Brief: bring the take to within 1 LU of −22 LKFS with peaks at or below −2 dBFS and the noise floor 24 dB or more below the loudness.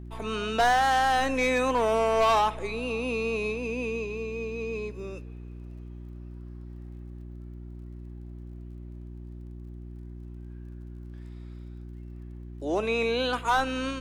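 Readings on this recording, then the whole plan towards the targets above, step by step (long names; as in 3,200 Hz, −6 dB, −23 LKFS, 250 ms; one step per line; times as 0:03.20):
crackle rate 21 per second; mains hum 60 Hz; hum harmonics up to 360 Hz; level of the hum −39 dBFS; integrated loudness −26.5 LKFS; sample peak −15.0 dBFS; target loudness −22.0 LKFS
→ click removal
hum removal 60 Hz, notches 6
level +4.5 dB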